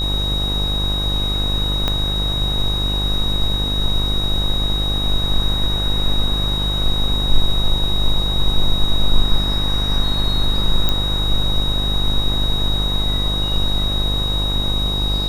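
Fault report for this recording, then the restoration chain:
buzz 50 Hz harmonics 26 -22 dBFS
tone 3800 Hz -21 dBFS
1.88 pop -6 dBFS
10.89 pop -4 dBFS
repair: de-click; de-hum 50 Hz, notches 26; notch 3800 Hz, Q 30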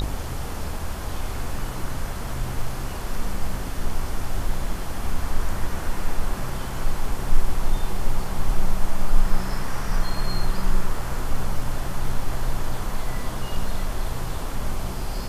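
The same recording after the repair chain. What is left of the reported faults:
1.88 pop

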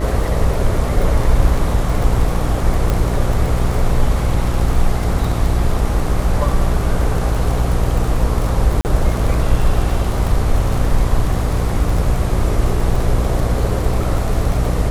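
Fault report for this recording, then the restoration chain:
buzz 60 Hz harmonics 21 -20 dBFS
crackle 29/s -20 dBFS
2.9 pop
8.81–8.85 gap 39 ms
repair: de-click; de-hum 60 Hz, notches 21; interpolate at 8.81, 39 ms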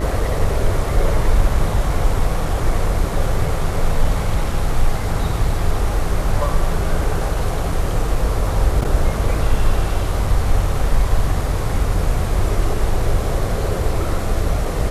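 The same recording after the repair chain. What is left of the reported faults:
none

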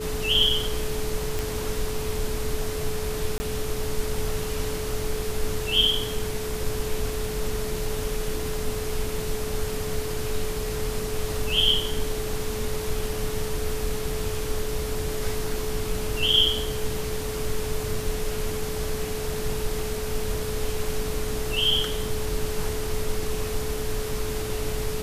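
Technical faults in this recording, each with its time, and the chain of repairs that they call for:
tone 430 Hz -31 dBFS
1.39 pop
3.38–3.4 gap 20 ms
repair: de-click; notch 430 Hz, Q 30; interpolate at 3.38, 20 ms

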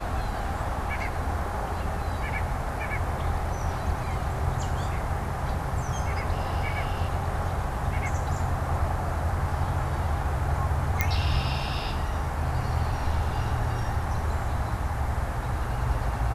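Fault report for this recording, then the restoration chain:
11.01 pop -8 dBFS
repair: de-click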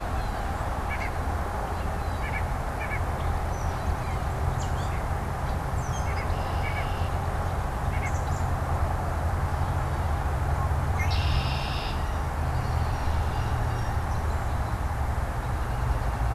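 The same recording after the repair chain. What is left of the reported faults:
none

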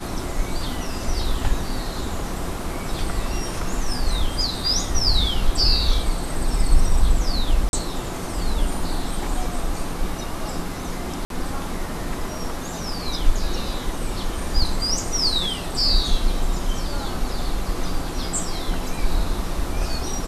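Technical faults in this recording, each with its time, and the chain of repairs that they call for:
7.69–7.73 gap 41 ms
11.25–11.3 gap 52 ms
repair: interpolate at 7.69, 41 ms; interpolate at 11.25, 52 ms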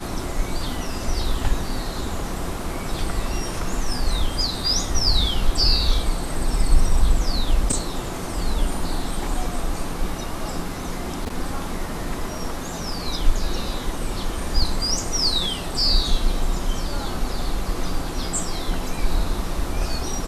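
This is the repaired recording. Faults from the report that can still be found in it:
none

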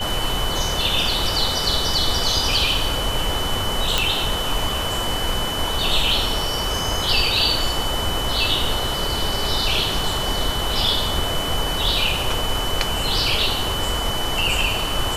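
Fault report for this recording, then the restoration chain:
tone 3000 Hz -26 dBFS
3.98 pop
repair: de-click; notch 3000 Hz, Q 30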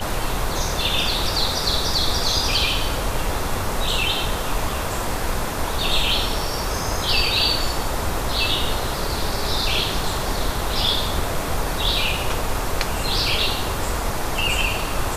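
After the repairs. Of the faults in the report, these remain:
none

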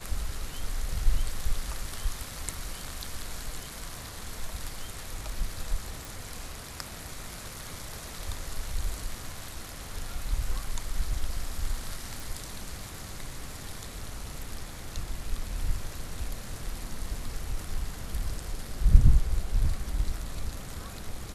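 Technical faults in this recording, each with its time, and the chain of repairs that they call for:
6.05 pop
12.2 pop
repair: de-click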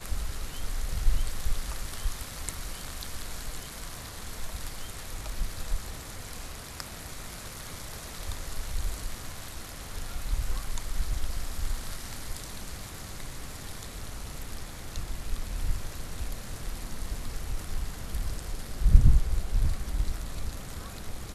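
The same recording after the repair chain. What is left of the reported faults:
none

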